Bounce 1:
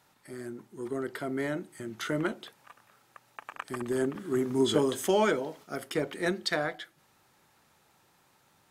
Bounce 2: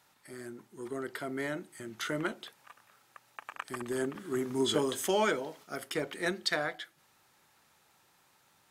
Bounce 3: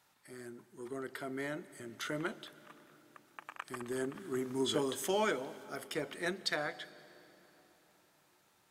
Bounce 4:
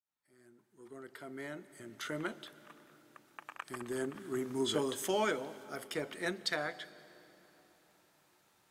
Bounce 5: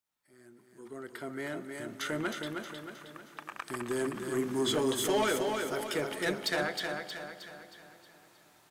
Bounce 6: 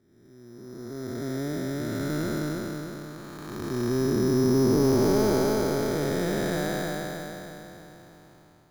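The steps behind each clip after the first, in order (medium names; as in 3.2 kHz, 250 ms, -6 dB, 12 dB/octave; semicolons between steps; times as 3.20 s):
tilt shelf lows -3 dB, about 770 Hz; trim -2.5 dB
reverberation RT60 4.0 s, pre-delay 107 ms, DRR 17.5 dB; trim -4 dB
fade-in on the opening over 2.42 s
saturation -29.5 dBFS, distortion -13 dB; on a send: feedback delay 314 ms, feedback 47%, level -5 dB; on the sum: trim +6 dB
spectral blur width 509 ms; RIAA curve playback; careless resampling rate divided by 8×, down filtered, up hold; trim +6.5 dB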